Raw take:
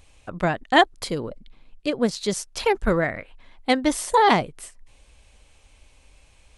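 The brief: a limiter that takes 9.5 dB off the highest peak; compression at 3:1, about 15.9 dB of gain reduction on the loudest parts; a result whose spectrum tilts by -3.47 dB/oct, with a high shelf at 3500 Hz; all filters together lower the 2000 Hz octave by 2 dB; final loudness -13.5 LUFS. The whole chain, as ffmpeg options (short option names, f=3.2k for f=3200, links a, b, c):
-af "equalizer=f=2k:t=o:g=-3.5,highshelf=f=3.5k:g=5,acompressor=threshold=-34dB:ratio=3,volume=26dB,alimiter=limit=-2.5dB:level=0:latency=1"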